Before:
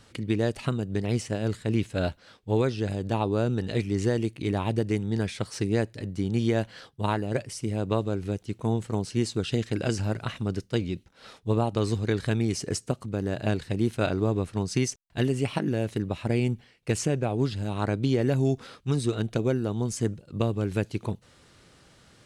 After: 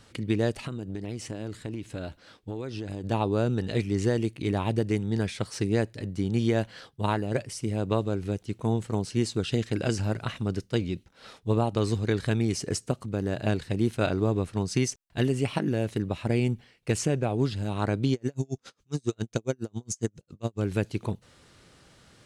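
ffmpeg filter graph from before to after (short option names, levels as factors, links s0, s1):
-filter_complex "[0:a]asettb=1/sr,asplit=3[s0][s1][s2];[s0]atrim=end=0.664[s3];[s1]atrim=start=0.66:end=3.04,asetpts=PTS-STARTPTS,afade=t=in:d=0.004:c=qsin,afade=t=out:st=2.376:d=0.004:c=qsin,equalizer=f=310:t=o:w=0.3:g=6,acompressor=threshold=0.0316:ratio=10:attack=3.2:release=140:knee=1:detection=peak[s4];[s2]atrim=start=3.036[s5];[s3][s4]acrossfade=d=0.004:c1=hsin:c2=qsin[s6];[s6][s5]acrossfade=d=0.004:c1=qsin:c2=hsin,asettb=1/sr,asplit=3[s7][s8][s9];[s7]atrim=end=18.134[s10];[s8]atrim=start=18.13:end=20.6,asetpts=PTS-STARTPTS,afade=t=in:d=0.004:c=qsin,afade=t=out:st=2.466:d=0.004:c=qsin,equalizer=f=6500:t=o:w=0.6:g=12.5,aeval=exprs='val(0)*pow(10,-40*(0.5-0.5*cos(2*PI*7.3*n/s))/20)':c=same[s11];[s9]atrim=start=20.596[s12];[s10][s11]acrossfade=d=0.004:c1=hsin:c2=qsin[s13];[s13][s12]acrossfade=d=0.004:c1=qsin:c2=hsin"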